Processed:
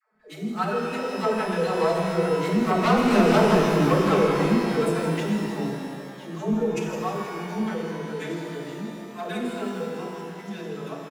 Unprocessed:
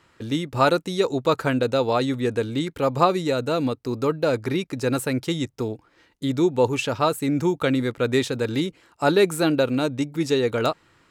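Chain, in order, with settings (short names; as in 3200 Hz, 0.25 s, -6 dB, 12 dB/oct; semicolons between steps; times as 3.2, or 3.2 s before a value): Wiener smoothing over 15 samples; Doppler pass-by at 3.38, 21 m/s, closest 9.5 m; bell 4100 Hz -7 dB 1.5 oct; comb 6 ms, depth 85%; de-hum 58.81 Hz, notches 7; in parallel at -4 dB: overloaded stage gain 18 dB; on the sum: formant-preserving pitch shift +4.5 st; soft clip -20.5 dBFS, distortion -9 dB; dispersion lows, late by 0.145 s, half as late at 430 Hz; on a send: split-band echo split 770 Hz, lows 0.104 s, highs 0.16 s, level -12.5 dB; on the sum: shimmer reverb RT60 2.4 s, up +12 st, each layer -8 dB, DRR 0.5 dB; gain +3.5 dB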